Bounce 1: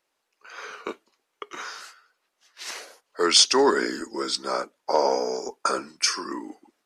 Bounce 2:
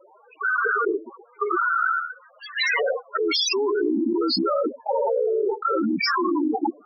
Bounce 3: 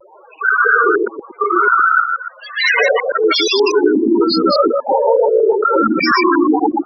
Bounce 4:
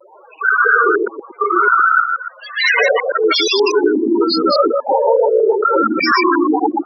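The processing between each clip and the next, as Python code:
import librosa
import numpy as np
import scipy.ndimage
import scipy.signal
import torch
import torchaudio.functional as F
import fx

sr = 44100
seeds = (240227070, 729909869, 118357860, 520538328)

y1 = fx.high_shelf(x, sr, hz=5000.0, db=-10.5)
y1 = fx.spec_topn(y1, sr, count=4)
y1 = fx.env_flatten(y1, sr, amount_pct=100)
y1 = F.gain(torch.from_numpy(y1), -4.0).numpy()
y2 = fx.reverse_delay(y1, sr, ms=120, wet_db=-1.0)
y2 = fx.bass_treble(y2, sr, bass_db=-5, treble_db=-7)
y2 = fx.vibrato(y2, sr, rate_hz=0.39, depth_cents=19.0)
y2 = F.gain(torch.from_numpy(y2), 8.0).numpy()
y3 = scipy.signal.sosfilt(scipy.signal.butter(2, 270.0, 'highpass', fs=sr, output='sos'), y2)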